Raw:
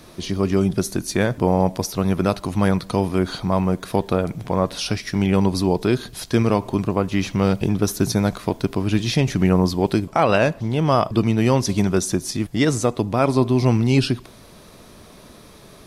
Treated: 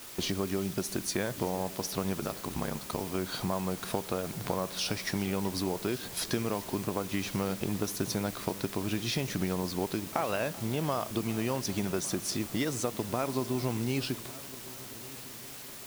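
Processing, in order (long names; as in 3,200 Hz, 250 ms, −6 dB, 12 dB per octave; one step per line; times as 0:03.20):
noise gate −36 dBFS, range −14 dB
low-shelf EQ 180 Hz −8 dB
downward compressor 5 to 1, threshold −33 dBFS, peak gain reduction 18 dB
0:02.19–0:03.01: ring modulation 34 Hz
bit-depth reduction 8 bits, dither triangular
echo machine with several playback heads 385 ms, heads first and third, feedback 58%, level −20.5 dB
one half of a high-frequency compander decoder only
level +3 dB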